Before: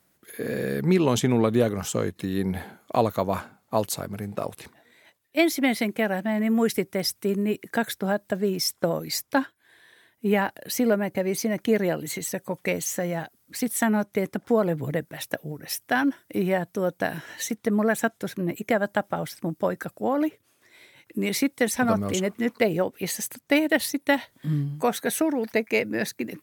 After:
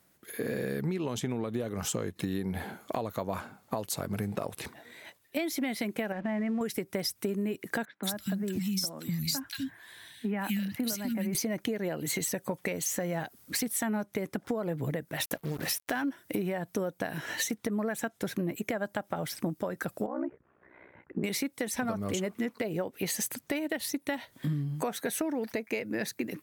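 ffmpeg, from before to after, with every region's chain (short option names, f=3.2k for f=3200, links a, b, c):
-filter_complex "[0:a]asettb=1/sr,asplit=3[a][b][c];[a]atrim=end=6.124[d];[b]atrim=start=6.12:end=6.61,asetpts=PTS-STARTPTS,afade=t=in:d=0.004:c=qsin,afade=t=out:st=0.486:d=0.004:c=qsin,lowpass=f=2.8k:w=0.5412,lowpass=f=2.8k:w=1.3066,acompressor=threshold=-29dB:ratio=3:attack=3.2:release=140:knee=1:detection=peak,aeval=exprs='sgn(val(0))*max(abs(val(0))-0.00158,0)':c=same[e];[c]atrim=start=6.606[f];[d][e]acrossfade=d=0.004:c1=hsin:c2=qsin[g];[g][f]acrossfade=d=0.004:c1=qsin:c2=hsin,asettb=1/sr,asplit=3[h][i][j];[h]atrim=end=7.854[k];[i]atrim=start=7.85:end=11.35,asetpts=PTS-STARTPTS,afade=t=in:d=0.004:c=qsin,afade=t=out:st=3.496:d=0.004:c=qsin,equalizer=f=450:t=o:w=1:g=-11.5,acrossover=split=300|3000[l][m][n];[m]acompressor=threshold=-60dB:ratio=1.5:attack=3.2:release=140:knee=2.83:detection=peak[o];[l][o][n]amix=inputs=3:normalize=0,acrossover=split=230|2000[p][q][r];[r]adelay=180[s];[p]adelay=250[t];[t][q][s]amix=inputs=3:normalize=0,atrim=end_sample=154350[u];[j]atrim=start=11.346[v];[k][u]acrossfade=d=0.004:c1=hsin:c2=qsin[w];[w][v]acrossfade=d=0.004:c1=qsin:c2=hsin,asettb=1/sr,asplit=3[x][y][z];[x]atrim=end=15.204[aa];[y]atrim=start=15.2:end=16.02,asetpts=PTS-STARTPTS,afade=t=in:d=0.004:c=qsin,afade=t=out:st=0.816:d=0.004:c=qsin,bandreject=f=58.69:t=h:w=4,bandreject=f=117.38:t=h:w=4,bandreject=f=176.07:t=h:w=4,acompressor=mode=upward:threshold=-31dB:ratio=2.5:attack=3.2:release=140:knee=2.83:detection=peak,acrusher=bits=6:mix=0:aa=0.5[ab];[z]atrim=start=16.016[ac];[aa][ab]acrossfade=d=0.004:c1=hsin:c2=qsin[ad];[ad][ac]acrossfade=d=0.004:c1=qsin:c2=hsin,asettb=1/sr,asplit=3[ae][af][ag];[ae]atrim=end=20.064[ah];[af]atrim=start=20.06:end=21.24,asetpts=PTS-STARTPTS,afade=t=in:d=0.004:c=qsin,afade=t=out:st=1.176:d=0.004:c=qsin,acompressor=threshold=-36dB:ratio=1.5:attack=3.2:release=140:knee=1:detection=peak,lowpass=f=1.6k:w=0.5412,lowpass=f=1.6k:w=1.3066,aeval=exprs='val(0)*sin(2*PI*31*n/s)':c=same[ai];[ag]atrim=start=21.236[aj];[ah][ai]acrossfade=d=0.004:c1=hsin:c2=qsin[ak];[ak][aj]acrossfade=d=0.004:c1=qsin:c2=hsin,dynaudnorm=f=640:g=5:m=11.5dB,alimiter=limit=-12.5dB:level=0:latency=1:release=479,acompressor=threshold=-29dB:ratio=6"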